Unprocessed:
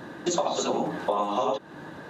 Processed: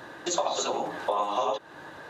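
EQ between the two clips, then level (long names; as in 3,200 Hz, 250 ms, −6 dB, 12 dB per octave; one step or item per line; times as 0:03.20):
high-pass filter 60 Hz
parametric band 200 Hz −13.5 dB 1.6 octaves
+1.0 dB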